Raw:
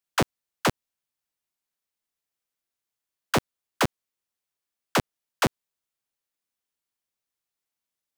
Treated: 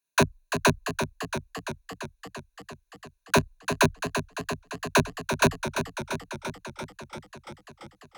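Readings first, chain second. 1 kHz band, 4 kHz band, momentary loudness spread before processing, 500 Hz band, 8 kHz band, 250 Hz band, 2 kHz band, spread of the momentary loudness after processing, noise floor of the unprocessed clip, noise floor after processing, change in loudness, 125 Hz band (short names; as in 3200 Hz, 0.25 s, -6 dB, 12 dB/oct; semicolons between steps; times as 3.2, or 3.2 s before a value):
+2.5 dB, +2.0 dB, 0 LU, +4.5 dB, +4.5 dB, +3.5 dB, +5.0 dB, 20 LU, under -85 dBFS, -74 dBFS, 0.0 dB, +3.5 dB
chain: ripple EQ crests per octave 1.5, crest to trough 13 dB; warbling echo 0.341 s, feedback 72%, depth 58 cents, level -8 dB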